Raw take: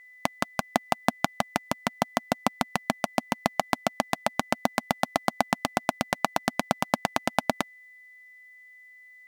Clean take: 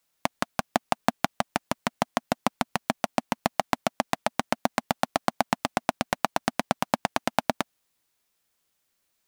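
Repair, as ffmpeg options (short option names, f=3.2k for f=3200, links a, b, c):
-af "bandreject=f=2k:w=30"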